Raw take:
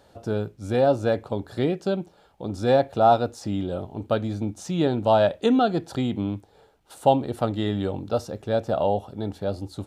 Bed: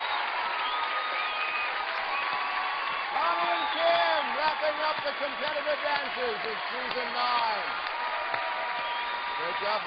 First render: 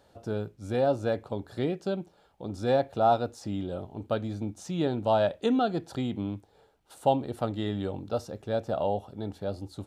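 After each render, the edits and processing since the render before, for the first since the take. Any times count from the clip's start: trim -5.5 dB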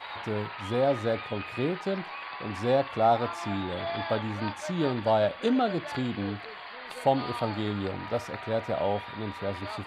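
add bed -9.5 dB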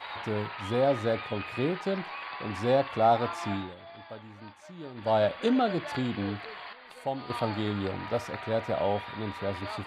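3.52–5.17 s: dip -15 dB, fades 0.23 s; 6.73–7.30 s: gain -8.5 dB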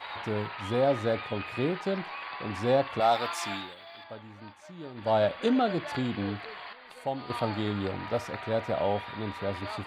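3.00–4.04 s: tilt EQ +3.5 dB/octave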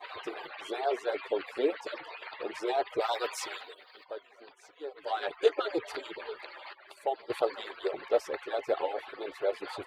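harmonic-percussive separation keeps percussive; resonant low shelf 290 Hz -11 dB, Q 3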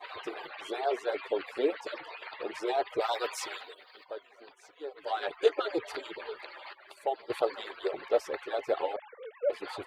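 8.96–9.50 s: formants replaced by sine waves

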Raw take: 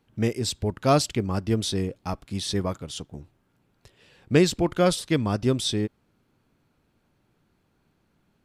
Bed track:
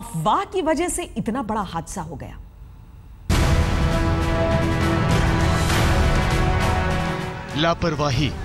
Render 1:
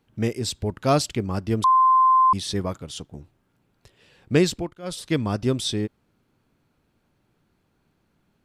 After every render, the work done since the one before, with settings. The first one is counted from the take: 1.64–2.33 s: bleep 1.04 kHz -13 dBFS; 4.49–5.08 s: dip -20.5 dB, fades 0.26 s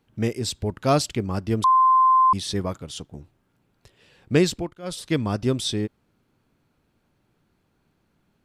no audible change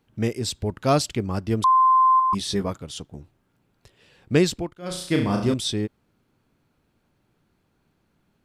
2.18–2.70 s: doubling 15 ms -5 dB; 4.77–5.54 s: flutter echo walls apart 5.9 m, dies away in 0.52 s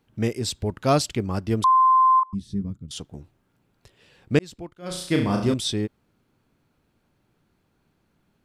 2.23–2.91 s: FFT filter 220 Hz 0 dB, 650 Hz -27 dB, 8.4 kHz -21 dB; 4.39–4.97 s: fade in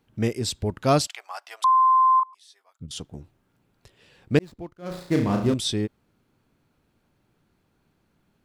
1.07–2.80 s: elliptic high-pass 710 Hz, stop band 70 dB; 4.37–5.57 s: median filter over 15 samples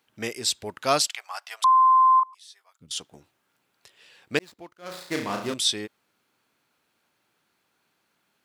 high-pass 450 Hz 6 dB/octave; tilt shelf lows -5 dB, about 780 Hz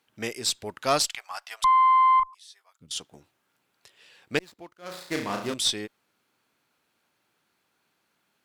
valve stage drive 10 dB, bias 0.35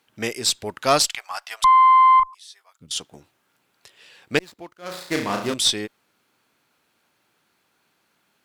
trim +5.5 dB

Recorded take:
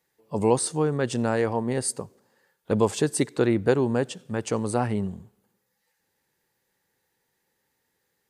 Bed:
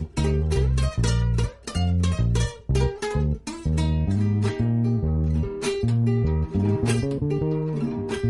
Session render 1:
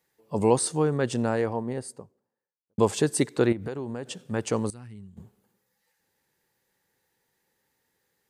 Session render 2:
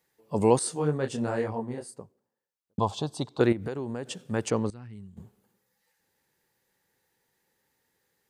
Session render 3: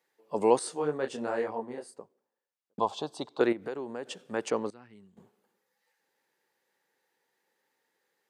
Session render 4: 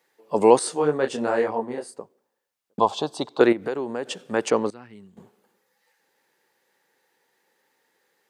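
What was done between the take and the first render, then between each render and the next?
0.85–2.78 s: studio fade out; 3.52–4.15 s: compression 10:1, threshold -29 dBFS; 4.70–5.17 s: amplifier tone stack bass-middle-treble 6-0-2
0.59–1.98 s: detune thickener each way 38 cents; 2.79–3.40 s: FFT filter 100 Hz 0 dB, 150 Hz -4 dB, 440 Hz -12 dB, 710 Hz +3 dB, 1.1 kHz +1 dB, 1.9 kHz -25 dB, 3.5 kHz 0 dB, 9.3 kHz -18 dB; 4.50–4.93 s: distance through air 120 m
high-pass 340 Hz 12 dB/octave; treble shelf 5.8 kHz -9.5 dB
trim +8.5 dB; peak limiter -2 dBFS, peak gain reduction 1 dB

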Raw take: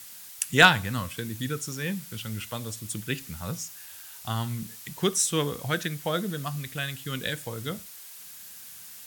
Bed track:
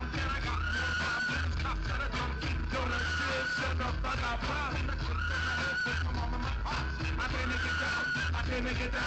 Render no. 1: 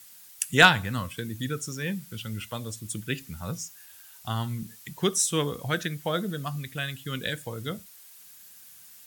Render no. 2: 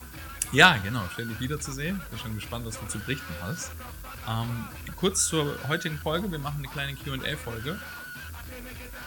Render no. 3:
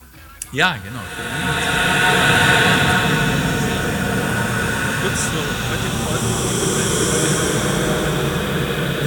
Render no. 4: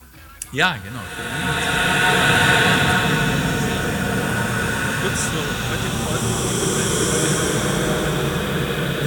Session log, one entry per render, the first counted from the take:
noise reduction 7 dB, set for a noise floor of -45 dBFS
add bed track -8.5 dB
repeats whose band climbs or falls 775 ms, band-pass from 180 Hz, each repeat 1.4 oct, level -1 dB; swelling reverb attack 2030 ms, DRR -10 dB
trim -1.5 dB

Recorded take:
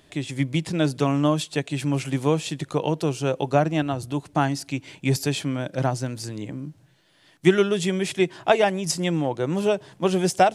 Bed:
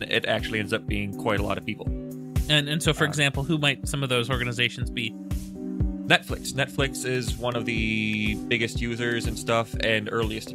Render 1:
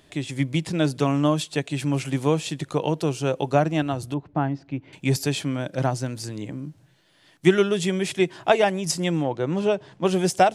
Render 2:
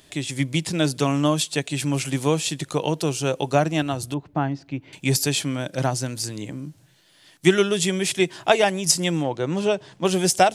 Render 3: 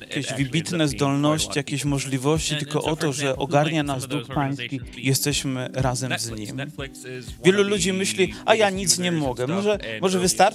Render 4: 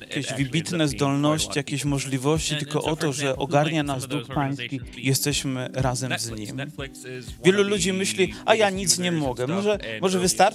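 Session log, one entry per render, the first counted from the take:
4.14–4.93 s: tape spacing loss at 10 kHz 43 dB; 9.23–10.05 s: distance through air 77 m
treble shelf 3.3 kHz +10 dB
add bed -8 dB
trim -1 dB

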